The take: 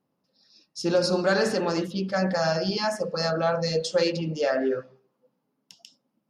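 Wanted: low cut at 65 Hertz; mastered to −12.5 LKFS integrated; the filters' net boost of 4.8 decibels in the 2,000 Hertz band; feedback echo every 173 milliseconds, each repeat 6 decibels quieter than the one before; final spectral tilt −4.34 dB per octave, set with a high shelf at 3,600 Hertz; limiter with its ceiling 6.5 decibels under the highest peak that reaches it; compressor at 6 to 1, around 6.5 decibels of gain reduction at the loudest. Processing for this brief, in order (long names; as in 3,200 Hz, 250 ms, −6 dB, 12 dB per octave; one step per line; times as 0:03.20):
high-pass filter 65 Hz
parametric band 2,000 Hz +8.5 dB
high-shelf EQ 3,600 Hz −8.5 dB
downward compressor 6 to 1, threshold −24 dBFS
brickwall limiter −22 dBFS
repeating echo 173 ms, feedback 50%, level −6 dB
level +17.5 dB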